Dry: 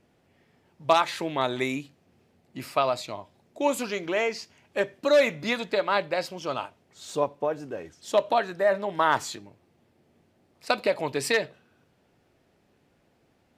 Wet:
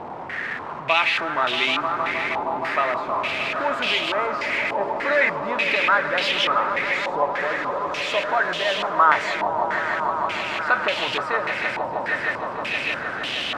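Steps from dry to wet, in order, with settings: jump at every zero crossing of -25 dBFS; tilt EQ +3 dB/octave; echo with a slow build-up 156 ms, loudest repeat 5, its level -10.5 dB; step-sequenced low-pass 3.4 Hz 900–3000 Hz; trim -3.5 dB

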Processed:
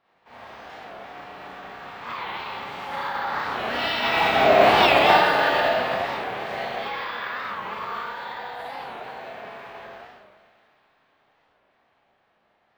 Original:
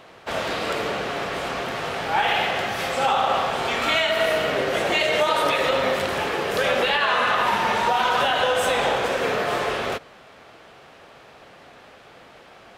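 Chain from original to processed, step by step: Doppler pass-by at 4.61 s, 12 m/s, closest 3.8 m; Schroeder reverb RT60 1.6 s, combs from 29 ms, DRR -8 dB; formant shift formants +4 st; careless resampling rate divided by 2×, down none, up hold; tone controls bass -1 dB, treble -15 dB; feedback echo behind a high-pass 654 ms, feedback 48%, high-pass 1.9 kHz, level -19 dB; warped record 45 rpm, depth 160 cents

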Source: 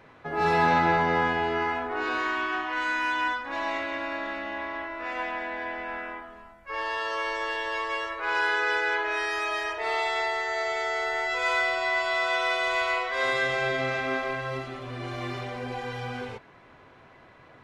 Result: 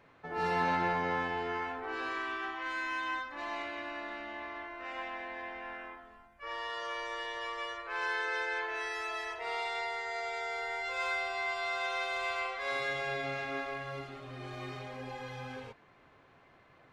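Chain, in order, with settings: speed mistake 24 fps film run at 25 fps; trim -8.5 dB

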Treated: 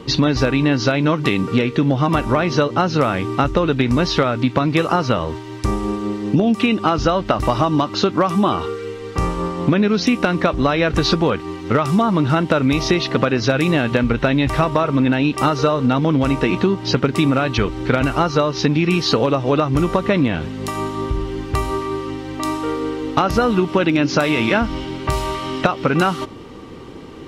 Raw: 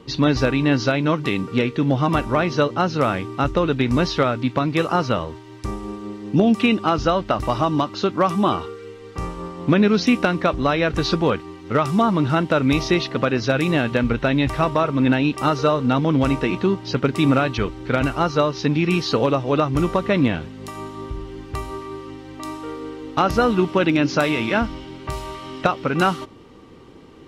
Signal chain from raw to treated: compression, threshold -22 dBFS, peak gain reduction 10 dB; trim +9 dB

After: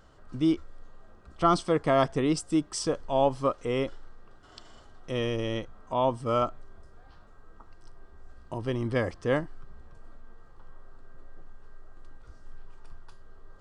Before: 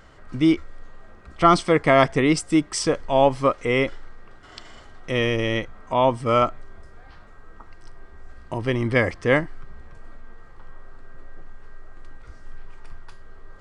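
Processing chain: peaking EQ 2.1 kHz -10.5 dB 0.53 oct; trim -6.5 dB

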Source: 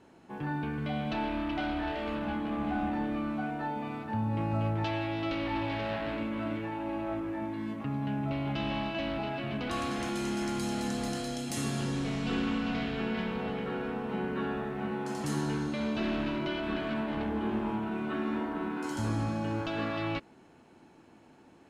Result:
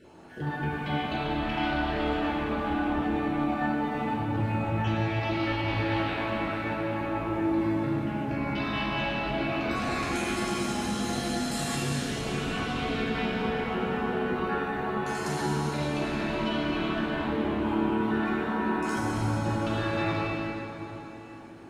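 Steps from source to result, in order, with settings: random holes in the spectrogram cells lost 32%; peak limiter -30 dBFS, peak gain reduction 9.5 dB; plate-style reverb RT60 3.6 s, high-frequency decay 0.8×, DRR -6.5 dB; trim +3.5 dB

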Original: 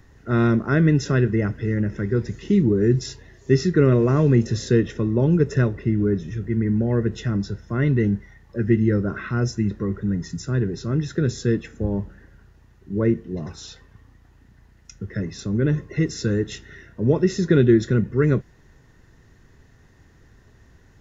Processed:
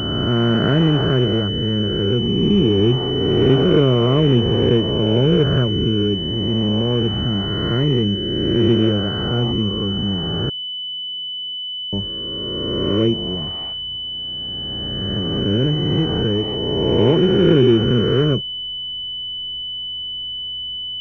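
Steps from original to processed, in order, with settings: reverse spectral sustain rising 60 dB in 2.59 s; 10.49–11.93 s: inverted gate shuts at -21 dBFS, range -41 dB; class-D stage that switches slowly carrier 3 kHz

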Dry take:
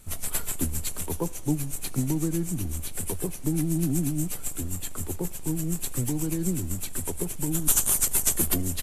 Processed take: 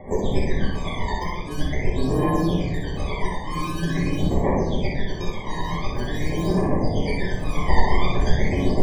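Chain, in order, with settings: high-pass 74 Hz 24 dB/octave; time-frequency box 2.97–3.23 s, 560–1900 Hz +9 dB; frequency weighting A; in parallel at -2 dB: compressor with a negative ratio -35 dBFS, ratio -0.5; on the sum: sample-and-hold 32×; saturation -14.5 dBFS, distortion -23 dB; phaser 0.45 Hz, delay 1.1 ms, feedback 70%; loudest bins only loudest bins 64; on a send: thinning echo 62 ms, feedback 31%, level -4.5 dB; on the sum: simulated room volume 89 m³, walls mixed, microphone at 1.2 m; trim -3 dB

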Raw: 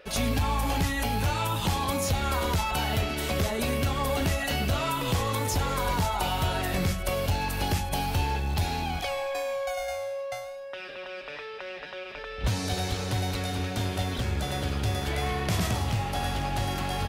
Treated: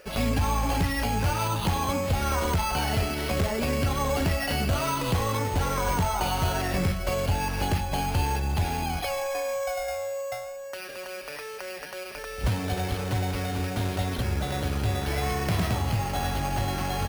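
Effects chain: careless resampling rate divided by 6×, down filtered, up hold; trim +1.5 dB

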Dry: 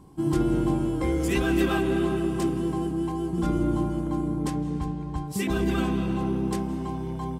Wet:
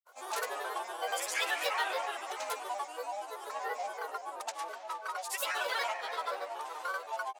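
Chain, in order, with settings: granulator, grains 21 per s, pitch spread up and down by 7 st; steep high-pass 630 Hz 36 dB/octave; in parallel at 0 dB: peak limiter -29.5 dBFS, peak gain reduction 10.5 dB; on the sum: trim -2.5 dB

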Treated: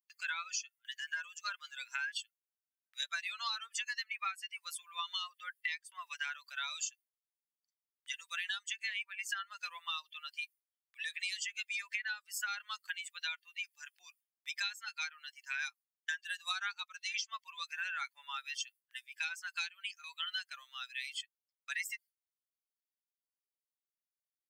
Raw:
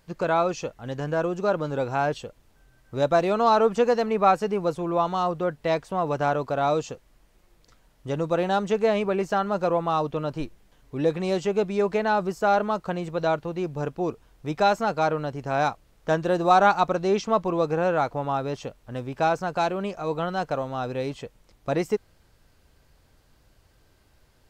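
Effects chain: expander on every frequency bin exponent 2; gate with hold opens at -41 dBFS; steep high-pass 1.7 kHz 36 dB/octave; compression 16:1, threshold -53 dBFS, peak gain reduction 24 dB; trim +18 dB

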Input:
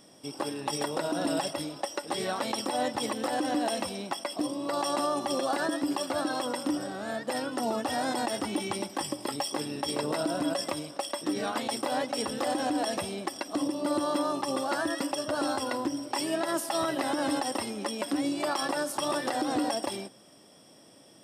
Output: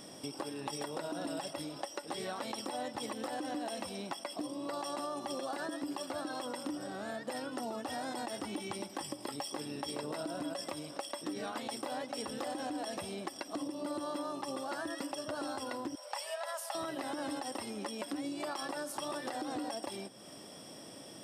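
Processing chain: 15.95–16.75 s: elliptic high-pass 510 Hz, stop band 40 dB; compression 3:1, threshold -47 dBFS, peak gain reduction 16.5 dB; trim +5.5 dB

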